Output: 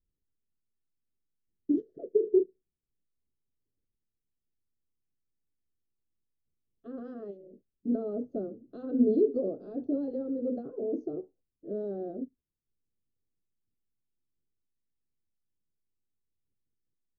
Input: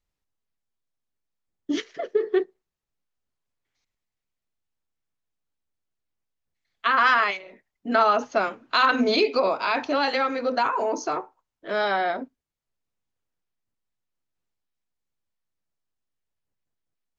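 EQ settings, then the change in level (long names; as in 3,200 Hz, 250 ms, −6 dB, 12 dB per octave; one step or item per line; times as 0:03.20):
inverse Chebyshev low-pass filter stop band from 880 Hz, stop band 40 dB
high-frequency loss of the air 67 metres
0.0 dB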